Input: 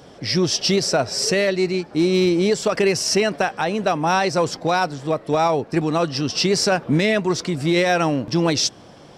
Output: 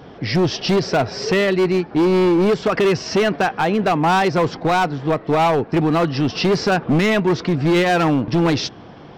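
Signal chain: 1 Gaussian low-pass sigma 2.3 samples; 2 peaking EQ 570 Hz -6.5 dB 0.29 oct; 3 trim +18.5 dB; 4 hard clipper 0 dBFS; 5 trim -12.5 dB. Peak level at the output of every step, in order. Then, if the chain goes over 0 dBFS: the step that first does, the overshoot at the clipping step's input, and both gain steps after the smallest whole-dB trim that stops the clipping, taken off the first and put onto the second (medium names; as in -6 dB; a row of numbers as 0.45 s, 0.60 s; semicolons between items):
-10.0 dBFS, -9.5 dBFS, +9.0 dBFS, 0.0 dBFS, -12.5 dBFS; step 3, 9.0 dB; step 3 +9.5 dB, step 5 -3.5 dB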